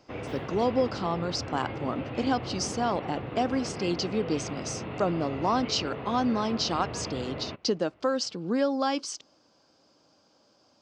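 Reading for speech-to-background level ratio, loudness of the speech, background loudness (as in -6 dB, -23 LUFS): 8.0 dB, -29.5 LUFS, -37.5 LUFS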